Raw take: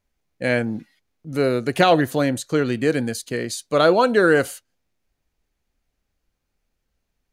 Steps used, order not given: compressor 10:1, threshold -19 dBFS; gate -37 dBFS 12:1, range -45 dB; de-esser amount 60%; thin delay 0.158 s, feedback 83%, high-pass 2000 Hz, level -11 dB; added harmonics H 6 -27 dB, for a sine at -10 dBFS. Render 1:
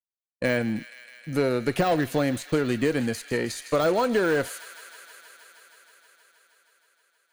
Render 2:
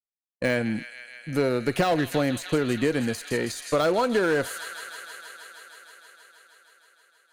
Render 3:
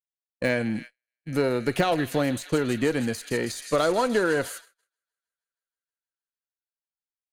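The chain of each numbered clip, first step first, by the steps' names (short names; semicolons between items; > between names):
added harmonics > de-esser > gate > compressor > thin delay; gate > thin delay > added harmonics > compressor > de-esser; compressor > thin delay > gate > added harmonics > de-esser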